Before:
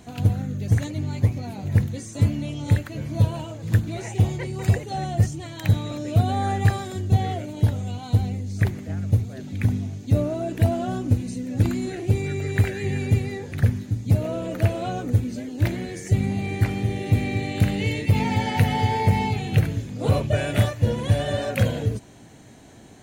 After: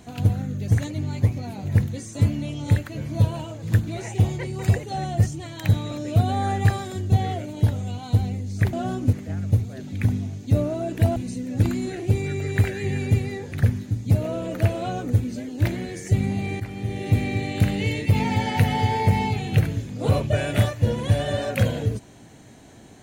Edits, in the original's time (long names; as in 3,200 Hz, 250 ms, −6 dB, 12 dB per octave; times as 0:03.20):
0:10.76–0:11.16: move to 0:08.73
0:16.60–0:17.08: fade in, from −13 dB